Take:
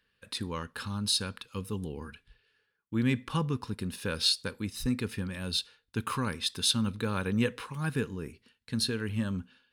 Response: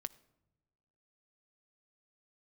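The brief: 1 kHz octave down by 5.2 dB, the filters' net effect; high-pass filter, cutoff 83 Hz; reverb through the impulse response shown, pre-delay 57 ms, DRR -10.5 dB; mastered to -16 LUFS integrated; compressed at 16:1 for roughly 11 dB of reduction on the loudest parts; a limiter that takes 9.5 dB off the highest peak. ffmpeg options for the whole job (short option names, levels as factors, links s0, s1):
-filter_complex "[0:a]highpass=83,equalizer=f=1000:t=o:g=-6.5,acompressor=threshold=0.0224:ratio=16,alimiter=level_in=2.24:limit=0.0631:level=0:latency=1,volume=0.447,asplit=2[s0][s1];[1:a]atrim=start_sample=2205,adelay=57[s2];[s1][s2]afir=irnorm=-1:irlink=0,volume=4.73[s3];[s0][s3]amix=inputs=2:normalize=0,volume=5.62"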